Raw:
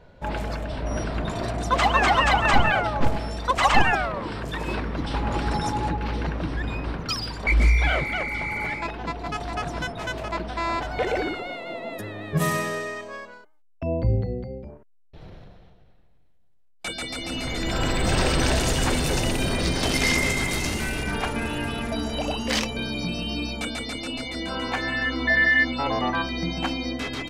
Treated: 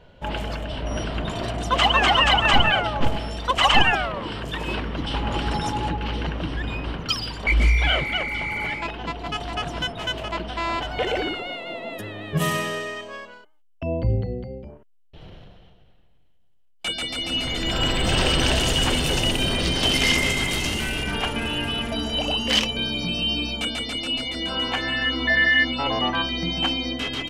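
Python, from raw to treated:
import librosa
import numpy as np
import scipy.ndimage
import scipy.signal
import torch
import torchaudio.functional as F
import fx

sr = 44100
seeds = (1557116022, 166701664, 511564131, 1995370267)

y = fx.peak_eq(x, sr, hz=3000.0, db=12.5, octaves=0.28)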